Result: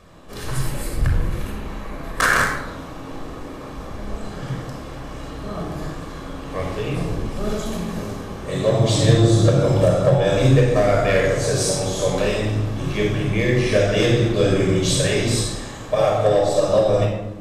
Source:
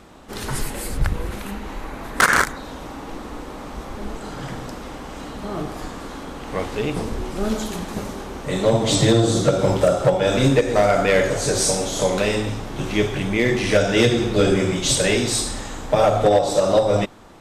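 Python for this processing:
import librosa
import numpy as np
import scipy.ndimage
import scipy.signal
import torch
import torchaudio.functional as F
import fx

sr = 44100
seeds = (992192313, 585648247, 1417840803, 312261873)

y = fx.low_shelf(x, sr, hz=140.0, db=-10.0, at=(15.46, 16.38))
y = fx.room_shoebox(y, sr, seeds[0], volume_m3=3500.0, walls='furnished', distance_m=5.7)
y = F.gain(torch.from_numpy(y), -6.0).numpy()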